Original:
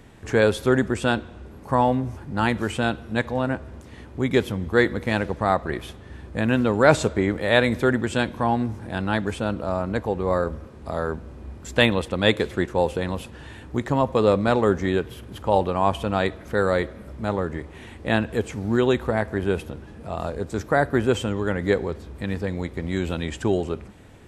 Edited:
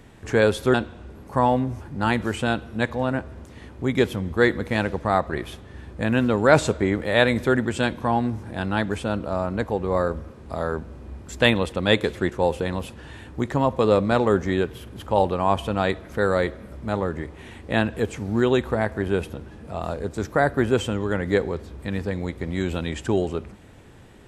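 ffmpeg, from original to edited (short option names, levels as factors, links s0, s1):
-filter_complex "[0:a]asplit=2[s0][s1];[s0]atrim=end=0.742[s2];[s1]atrim=start=1.098[s3];[s2][s3]acrossfade=d=0.004:c1=hsin:c2=hsin"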